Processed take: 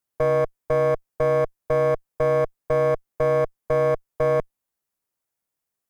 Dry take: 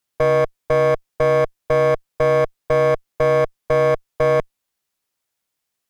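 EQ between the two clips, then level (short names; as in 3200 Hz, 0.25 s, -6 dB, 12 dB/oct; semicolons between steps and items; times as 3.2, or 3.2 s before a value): bell 3600 Hz -7.5 dB 2 oct; -3.5 dB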